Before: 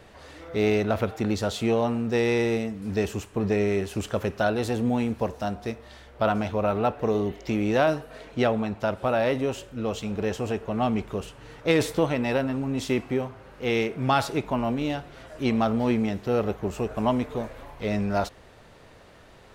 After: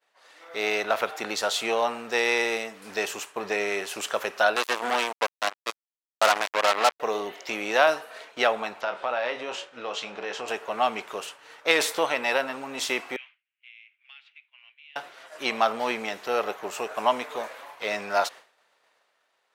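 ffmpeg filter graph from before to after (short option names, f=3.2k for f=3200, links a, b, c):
-filter_complex "[0:a]asettb=1/sr,asplit=3[a][b][c];[a]atrim=end=4.564[d];[b]atrim=start=4.56:end=7,asetpts=PTS-STARTPTS,afade=t=in:d=0.004:c=qsin,afade=t=out:st=2.436:d=0.004:c=qsin,highpass=f=200:w=0.5412,highpass=f=200:w=1.3066,acrusher=bits=3:mix=0:aa=0.5[e];[c]atrim=start=6.996[f];[d][e]acrossfade=d=0.004:c1=hsin:c2=qsin[g];[g][f]acrossfade=d=0.004:c1=qsin:c2=hsin,asettb=1/sr,asplit=3[h][i][j];[h]atrim=end=8.814[k];[i]atrim=start=8.81:end=10.48,asetpts=PTS-STARTPTS,afade=t=in:d=0.004:c=qsin,afade=t=out:st=1.666:d=0.004:c=qsin,lowpass=4.8k,asplit=2[l][m];[m]adelay=25,volume=-8dB[n];[l][n]amix=inputs=2:normalize=0,atrim=end_sample=73647,acompressor=threshold=-27dB:ratio=3:attack=3.2:release=140:knee=1:detection=peak[o];[j]atrim=start=10.476[p];[k][o]acrossfade=d=0.004:c1=hsin:c2=qsin[q];[q][p]acrossfade=d=0.004:c1=qsin:c2=hsin,asettb=1/sr,asplit=3[r][s][t];[r]atrim=end=13.164[u];[s]atrim=start=13.16:end=14.96,asetpts=PTS-STARTPTS,afade=t=in:d=0.004:c=qsin,afade=t=out:st=1.796:d=0.004:c=qsin,asuperpass=centerf=2600:order=4:qfactor=2.4,acompressor=threshold=-42dB:ratio=12:attack=3.2:release=140:knee=1:detection=peak[v];[t]atrim=start=14.956[w];[u][v]acrossfade=d=0.004:c1=hsin:c2=qsin[x];[x][w]acrossfade=d=0.004:c1=qsin:c2=hsin,agate=range=-33dB:threshold=-39dB:ratio=3:detection=peak,highpass=810,dynaudnorm=f=100:g=13:m=5dB,volume=2dB"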